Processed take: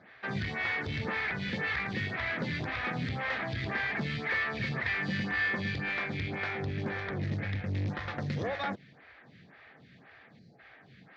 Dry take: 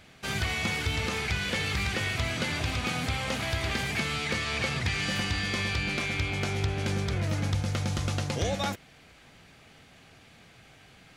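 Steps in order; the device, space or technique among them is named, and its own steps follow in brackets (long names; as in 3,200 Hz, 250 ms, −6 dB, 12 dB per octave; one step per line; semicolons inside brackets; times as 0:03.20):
0:07.35–0:07.89: graphic EQ with 15 bands 100 Hz +9 dB, 250 Hz −5 dB, 1,000 Hz −12 dB, 2,500 Hz +6 dB
0:10.38–0:10.59: gain on a spectral selection 840–3,900 Hz −17 dB
vibe pedal into a guitar amplifier (phaser with staggered stages 1.9 Hz; tube saturation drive 30 dB, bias 0.4; loudspeaker in its box 93–4,000 Hz, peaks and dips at 130 Hz +5 dB, 200 Hz +4 dB, 1,800 Hz +10 dB, 2,900 Hz −6 dB)
level +2 dB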